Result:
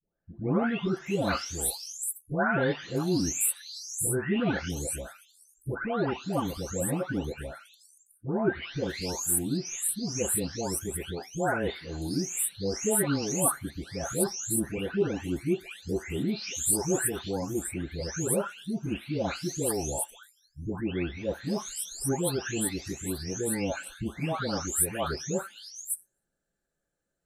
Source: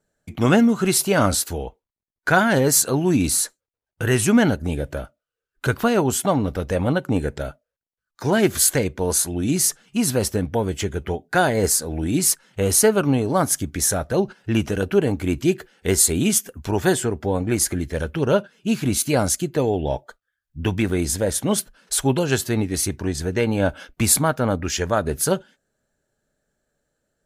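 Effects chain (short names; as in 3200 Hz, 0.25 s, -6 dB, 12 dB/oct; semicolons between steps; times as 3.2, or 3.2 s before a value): spectral delay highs late, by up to 0.693 s; gain -7.5 dB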